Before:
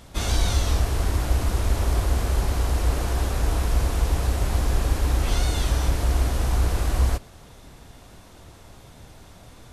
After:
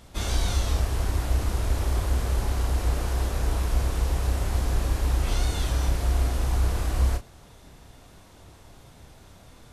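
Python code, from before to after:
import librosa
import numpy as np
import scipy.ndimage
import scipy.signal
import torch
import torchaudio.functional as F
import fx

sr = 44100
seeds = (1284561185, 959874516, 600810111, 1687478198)

y = fx.doubler(x, sr, ms=31.0, db=-8.0)
y = y * 10.0 ** (-4.0 / 20.0)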